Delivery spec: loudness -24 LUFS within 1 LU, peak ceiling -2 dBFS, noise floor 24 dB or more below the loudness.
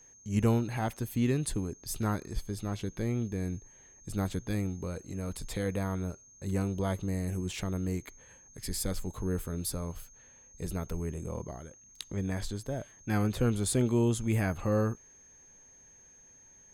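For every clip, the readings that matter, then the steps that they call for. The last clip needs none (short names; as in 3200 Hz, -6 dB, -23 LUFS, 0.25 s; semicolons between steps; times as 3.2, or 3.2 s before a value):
steady tone 6400 Hz; tone level -55 dBFS; loudness -33.0 LUFS; peak -15.0 dBFS; loudness target -24.0 LUFS
-> notch 6400 Hz, Q 30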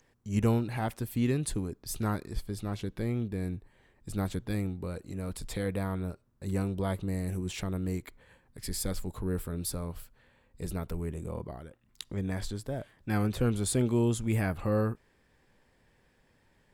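steady tone none; loudness -33.0 LUFS; peak -15.0 dBFS; loudness target -24.0 LUFS
-> gain +9 dB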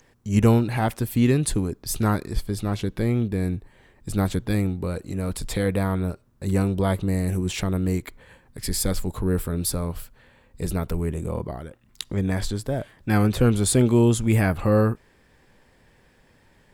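loudness -24.0 LUFS; peak -6.0 dBFS; noise floor -59 dBFS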